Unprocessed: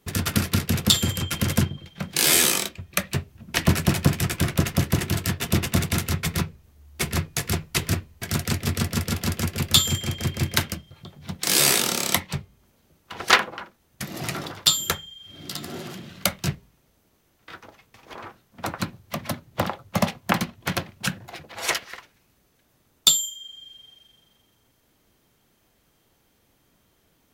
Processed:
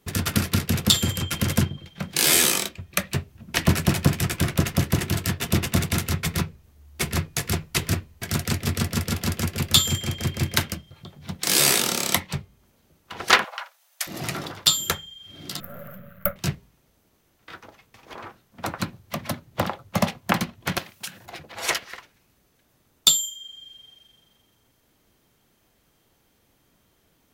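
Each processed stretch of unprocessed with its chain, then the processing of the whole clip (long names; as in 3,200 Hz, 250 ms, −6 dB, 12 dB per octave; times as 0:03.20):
0:13.44–0:14.07: Butterworth high-pass 580 Hz 48 dB per octave + high-shelf EQ 2,400 Hz +8 dB
0:15.60–0:16.36: gain on one half-wave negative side −12 dB + drawn EQ curve 210 Hz 0 dB, 350 Hz −22 dB, 570 Hz +9 dB, 850 Hz −15 dB, 1,300 Hz +5 dB, 4,900 Hz −28 dB, 9,300 Hz −15 dB, 14,000 Hz +12 dB
0:20.78–0:21.26: spectral tilt +3 dB per octave + downward compressor 16 to 1, threshold −29 dBFS
whole clip: no processing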